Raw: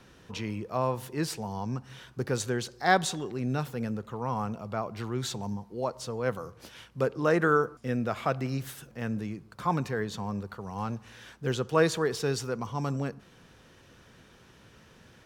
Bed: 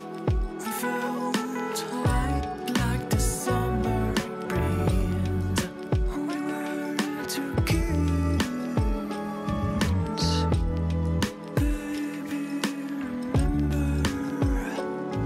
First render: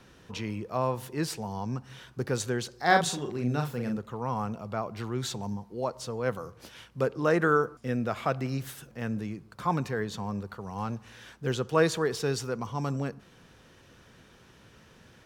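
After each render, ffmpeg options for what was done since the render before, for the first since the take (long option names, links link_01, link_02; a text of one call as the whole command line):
ffmpeg -i in.wav -filter_complex "[0:a]asettb=1/sr,asplit=3[link_01][link_02][link_03];[link_01]atrim=end=2.864[link_04];[link_02]atrim=start=2.86:end=3.98,asetpts=PTS-STARTPTS,afade=type=in:duration=0.004:curve=qsin,afade=type=out:start_time=1.116:duration=0.004:curve=qsin,asplit=2[link_05][link_06];[link_06]adelay=41,volume=-5dB[link_07];[link_05][link_07]amix=inputs=2:normalize=0,atrim=end_sample=49392[link_08];[link_03]atrim=start=3.976[link_09];[link_04][link_08]acrossfade=duration=0.004:curve1=hsin:curve2=qsin[link_10];[link_10][link_09]acrossfade=duration=0.004:curve1=qsin:curve2=hsin" out.wav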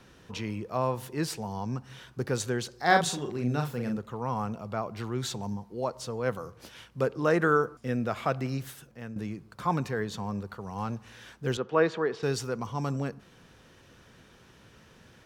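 ffmpeg -i in.wav -filter_complex "[0:a]asettb=1/sr,asplit=3[link_01][link_02][link_03];[link_01]atrim=end=11.574[link_04];[link_02]atrim=start=11.57:end=12.23,asetpts=PTS-STARTPTS,afade=type=in:duration=0.004:curve=qsin,afade=type=out:start_time=0.656:duration=0.004:curve=qsin,highpass=210,lowpass=2600[link_05];[link_03]atrim=start=12.226[link_06];[link_04][link_05]acrossfade=duration=0.004:curve1=hsin:curve2=qsin[link_07];[link_07][link_06]acrossfade=duration=0.004:curve1=qsin:curve2=hsin,asplit=2[link_08][link_09];[link_08]atrim=end=9.16,asetpts=PTS-STARTPTS,afade=type=out:start_time=8.49:duration=0.67:silence=0.316228[link_10];[link_09]atrim=start=9.16,asetpts=PTS-STARTPTS,afade=type=in:duration=0.004:curve=hsin:silence=0.316228[link_11];[link_10][link_11]concat=n=2:v=0:a=1" out.wav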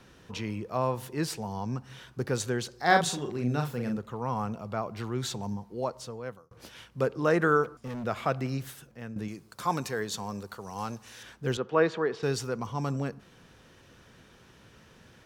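ffmpeg -i in.wav -filter_complex "[0:a]asplit=3[link_01][link_02][link_03];[link_01]afade=type=out:start_time=7.63:duration=0.02[link_04];[link_02]asoftclip=type=hard:threshold=-34dB,afade=type=in:start_time=7.63:duration=0.02,afade=type=out:start_time=8.03:duration=0.02[link_05];[link_03]afade=type=in:start_time=8.03:duration=0.02[link_06];[link_04][link_05][link_06]amix=inputs=3:normalize=0,asettb=1/sr,asplit=3[link_07][link_08][link_09];[link_07]atrim=end=9.284[link_10];[link_08]atrim=start=9.28:end=11.23,asetpts=PTS-STARTPTS,afade=type=in:duration=0.004:curve=qsin,afade=type=out:start_time=1.946:duration=0.004:curve=qsin,bass=frequency=250:gain=-6,treble=frequency=4000:gain=10[link_11];[link_09]atrim=start=11.226[link_12];[link_10][link_11]acrossfade=duration=0.004:curve1=hsin:curve2=qsin[link_13];[link_13][link_12]acrossfade=duration=0.004:curve1=qsin:curve2=hsin,asplit=2[link_14][link_15];[link_14]atrim=end=6.51,asetpts=PTS-STARTPTS,afade=type=out:start_time=5.82:duration=0.69[link_16];[link_15]atrim=start=6.51,asetpts=PTS-STARTPTS,afade=type=in:duration=0.004:curve=hsin[link_17];[link_16][link_17]concat=n=2:v=0:a=1" out.wav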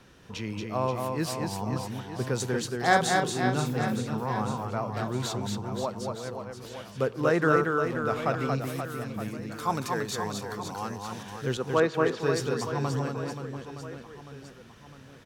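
ffmpeg -i in.wav -af "aecho=1:1:230|529|917.7|1423|2080:0.631|0.398|0.251|0.158|0.1" out.wav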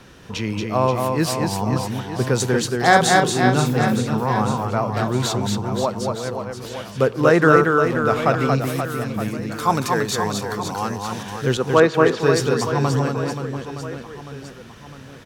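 ffmpeg -i in.wav -af "volume=9.5dB,alimiter=limit=-1dB:level=0:latency=1" out.wav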